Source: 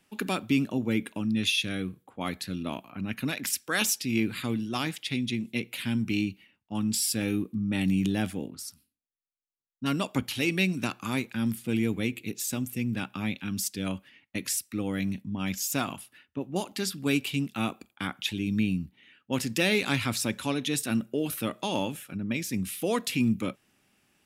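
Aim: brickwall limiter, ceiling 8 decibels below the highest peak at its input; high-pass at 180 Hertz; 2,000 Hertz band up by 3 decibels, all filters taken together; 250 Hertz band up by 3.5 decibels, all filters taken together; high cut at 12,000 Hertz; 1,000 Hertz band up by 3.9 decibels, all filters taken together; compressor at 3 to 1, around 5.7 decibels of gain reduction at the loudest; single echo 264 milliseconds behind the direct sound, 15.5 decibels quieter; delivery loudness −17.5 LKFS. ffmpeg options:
ffmpeg -i in.wav -af "highpass=180,lowpass=12000,equalizer=frequency=250:width_type=o:gain=5.5,equalizer=frequency=1000:width_type=o:gain=4,equalizer=frequency=2000:width_type=o:gain=3,acompressor=threshold=-25dB:ratio=3,alimiter=limit=-20.5dB:level=0:latency=1,aecho=1:1:264:0.168,volume=13.5dB" out.wav

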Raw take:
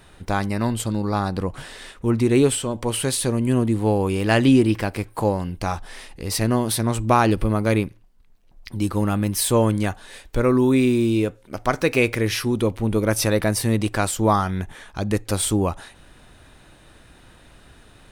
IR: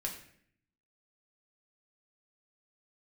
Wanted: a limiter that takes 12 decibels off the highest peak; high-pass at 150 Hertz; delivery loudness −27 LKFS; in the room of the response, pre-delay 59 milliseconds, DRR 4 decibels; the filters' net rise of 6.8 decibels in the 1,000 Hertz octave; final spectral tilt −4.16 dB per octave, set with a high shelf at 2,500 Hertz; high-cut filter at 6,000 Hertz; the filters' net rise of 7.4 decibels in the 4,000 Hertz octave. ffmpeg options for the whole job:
-filter_complex "[0:a]highpass=150,lowpass=6000,equalizer=frequency=1000:width_type=o:gain=7.5,highshelf=frequency=2500:gain=5,equalizer=frequency=4000:width_type=o:gain=5.5,alimiter=limit=-8.5dB:level=0:latency=1,asplit=2[link_01][link_02];[1:a]atrim=start_sample=2205,adelay=59[link_03];[link_02][link_03]afir=irnorm=-1:irlink=0,volume=-5dB[link_04];[link_01][link_04]amix=inputs=2:normalize=0,volume=-6dB"

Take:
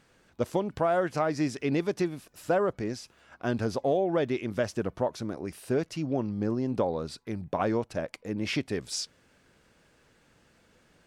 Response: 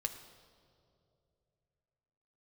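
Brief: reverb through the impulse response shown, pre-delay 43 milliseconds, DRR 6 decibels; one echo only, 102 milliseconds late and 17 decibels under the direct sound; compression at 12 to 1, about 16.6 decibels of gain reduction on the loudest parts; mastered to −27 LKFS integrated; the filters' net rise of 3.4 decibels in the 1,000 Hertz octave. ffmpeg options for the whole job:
-filter_complex "[0:a]equalizer=frequency=1000:width_type=o:gain=5,acompressor=threshold=-37dB:ratio=12,aecho=1:1:102:0.141,asplit=2[link_01][link_02];[1:a]atrim=start_sample=2205,adelay=43[link_03];[link_02][link_03]afir=irnorm=-1:irlink=0,volume=-6.5dB[link_04];[link_01][link_04]amix=inputs=2:normalize=0,volume=14.5dB"

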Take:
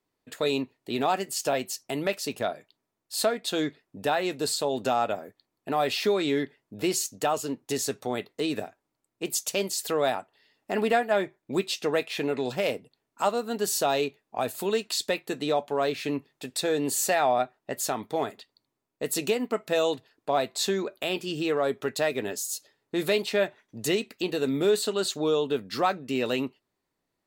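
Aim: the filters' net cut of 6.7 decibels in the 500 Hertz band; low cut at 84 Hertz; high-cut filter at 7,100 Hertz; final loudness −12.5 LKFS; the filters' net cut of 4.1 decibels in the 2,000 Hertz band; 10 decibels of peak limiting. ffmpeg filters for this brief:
ffmpeg -i in.wav -af "highpass=84,lowpass=7100,equalizer=frequency=500:width_type=o:gain=-8.5,equalizer=frequency=2000:width_type=o:gain=-5,volume=24dB,alimiter=limit=-1.5dB:level=0:latency=1" out.wav

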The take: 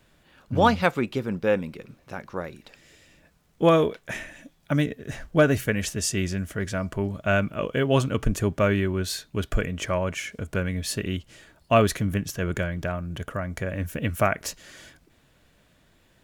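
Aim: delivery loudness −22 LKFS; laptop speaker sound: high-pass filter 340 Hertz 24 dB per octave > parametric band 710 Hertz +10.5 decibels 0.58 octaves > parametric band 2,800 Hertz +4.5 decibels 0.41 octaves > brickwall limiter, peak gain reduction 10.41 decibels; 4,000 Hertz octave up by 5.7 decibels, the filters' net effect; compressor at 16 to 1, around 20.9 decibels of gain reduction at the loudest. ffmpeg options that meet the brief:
ffmpeg -i in.wav -af "equalizer=frequency=4000:width_type=o:gain=5,acompressor=threshold=-34dB:ratio=16,highpass=frequency=340:width=0.5412,highpass=frequency=340:width=1.3066,equalizer=frequency=710:width_type=o:width=0.58:gain=10.5,equalizer=frequency=2800:width_type=o:width=0.41:gain=4.5,volume=19dB,alimiter=limit=-9.5dB:level=0:latency=1" out.wav

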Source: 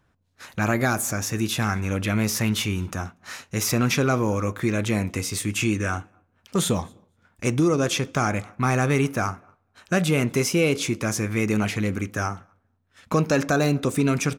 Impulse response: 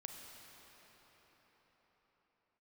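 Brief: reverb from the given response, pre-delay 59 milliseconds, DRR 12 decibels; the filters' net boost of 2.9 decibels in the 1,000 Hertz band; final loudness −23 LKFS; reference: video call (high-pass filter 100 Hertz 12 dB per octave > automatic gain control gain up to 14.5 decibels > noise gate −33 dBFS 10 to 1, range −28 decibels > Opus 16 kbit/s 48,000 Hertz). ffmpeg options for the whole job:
-filter_complex "[0:a]equalizer=frequency=1000:width_type=o:gain=4,asplit=2[link_01][link_02];[1:a]atrim=start_sample=2205,adelay=59[link_03];[link_02][link_03]afir=irnorm=-1:irlink=0,volume=-8.5dB[link_04];[link_01][link_04]amix=inputs=2:normalize=0,highpass=100,dynaudnorm=maxgain=14.5dB,agate=range=-28dB:threshold=-33dB:ratio=10,volume=1dB" -ar 48000 -c:a libopus -b:a 16k

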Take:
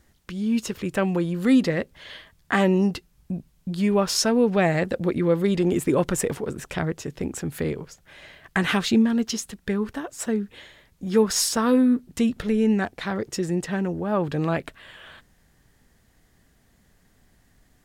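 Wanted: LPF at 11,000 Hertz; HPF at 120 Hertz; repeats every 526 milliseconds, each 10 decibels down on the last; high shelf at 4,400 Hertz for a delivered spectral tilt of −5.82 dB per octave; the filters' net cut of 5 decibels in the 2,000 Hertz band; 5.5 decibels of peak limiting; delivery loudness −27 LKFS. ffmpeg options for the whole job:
ffmpeg -i in.wav -af "highpass=120,lowpass=11000,equalizer=frequency=2000:width_type=o:gain=-5,highshelf=frequency=4400:gain=-7,alimiter=limit=-14.5dB:level=0:latency=1,aecho=1:1:526|1052|1578|2104:0.316|0.101|0.0324|0.0104,volume=-1.5dB" out.wav

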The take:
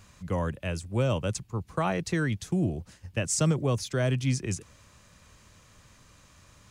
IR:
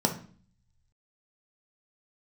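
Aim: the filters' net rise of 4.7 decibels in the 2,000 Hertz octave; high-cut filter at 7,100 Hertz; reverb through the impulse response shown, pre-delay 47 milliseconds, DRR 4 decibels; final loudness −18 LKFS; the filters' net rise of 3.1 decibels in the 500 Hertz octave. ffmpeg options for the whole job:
-filter_complex "[0:a]lowpass=7100,equalizer=frequency=500:width_type=o:gain=3.5,equalizer=frequency=2000:width_type=o:gain=6,asplit=2[link_01][link_02];[1:a]atrim=start_sample=2205,adelay=47[link_03];[link_02][link_03]afir=irnorm=-1:irlink=0,volume=-14.5dB[link_04];[link_01][link_04]amix=inputs=2:normalize=0,volume=6dB"

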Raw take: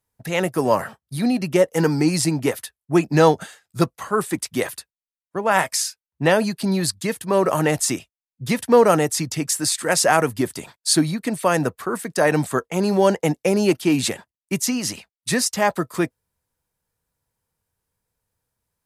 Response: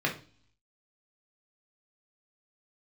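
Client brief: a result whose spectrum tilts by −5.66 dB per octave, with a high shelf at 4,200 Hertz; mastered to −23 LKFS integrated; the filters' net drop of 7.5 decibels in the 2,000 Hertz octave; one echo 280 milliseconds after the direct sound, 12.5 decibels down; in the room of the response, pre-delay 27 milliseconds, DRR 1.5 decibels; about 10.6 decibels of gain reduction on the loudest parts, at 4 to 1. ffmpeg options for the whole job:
-filter_complex "[0:a]equalizer=frequency=2000:width_type=o:gain=-8.5,highshelf=frequency=4200:gain=-6.5,acompressor=threshold=-23dB:ratio=4,aecho=1:1:280:0.237,asplit=2[link_01][link_02];[1:a]atrim=start_sample=2205,adelay=27[link_03];[link_02][link_03]afir=irnorm=-1:irlink=0,volume=-11.5dB[link_04];[link_01][link_04]amix=inputs=2:normalize=0,volume=2.5dB"

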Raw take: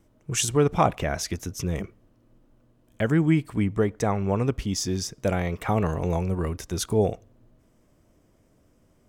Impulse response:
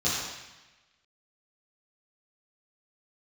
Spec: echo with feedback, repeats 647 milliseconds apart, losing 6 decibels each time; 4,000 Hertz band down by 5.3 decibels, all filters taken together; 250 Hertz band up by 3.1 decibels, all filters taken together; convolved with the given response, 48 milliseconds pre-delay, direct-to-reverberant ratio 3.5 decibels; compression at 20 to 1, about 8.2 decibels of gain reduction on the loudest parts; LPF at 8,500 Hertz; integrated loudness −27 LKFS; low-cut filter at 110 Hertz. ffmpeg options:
-filter_complex "[0:a]highpass=110,lowpass=8500,equalizer=frequency=250:width_type=o:gain=5,equalizer=frequency=4000:width_type=o:gain=-7.5,acompressor=threshold=-21dB:ratio=20,aecho=1:1:647|1294|1941|2588|3235|3882:0.501|0.251|0.125|0.0626|0.0313|0.0157,asplit=2[link_01][link_02];[1:a]atrim=start_sample=2205,adelay=48[link_03];[link_02][link_03]afir=irnorm=-1:irlink=0,volume=-15dB[link_04];[link_01][link_04]amix=inputs=2:normalize=0,volume=-1dB"

